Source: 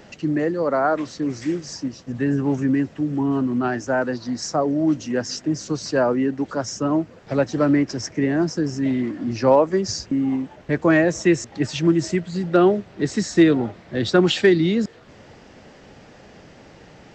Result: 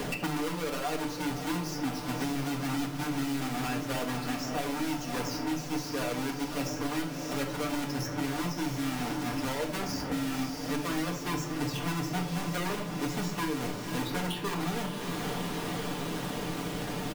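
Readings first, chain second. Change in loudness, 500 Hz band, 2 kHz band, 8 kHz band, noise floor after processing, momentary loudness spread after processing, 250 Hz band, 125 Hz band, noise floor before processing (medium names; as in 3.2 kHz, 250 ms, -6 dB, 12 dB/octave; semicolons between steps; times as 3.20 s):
-11.5 dB, -15.5 dB, -7.5 dB, -5.0 dB, -37 dBFS, 2 LU, -12.0 dB, -8.5 dB, -47 dBFS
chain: square wave that keeps the level; comb 6.8 ms; harmonic-percussive split harmonic -9 dB; reverse; compression, threshold -28 dBFS, peak gain reduction 18.5 dB; reverse; echo that smears into a reverb 563 ms, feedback 69%, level -10 dB; simulated room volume 530 m³, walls furnished, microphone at 1.8 m; three bands compressed up and down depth 100%; trim -6.5 dB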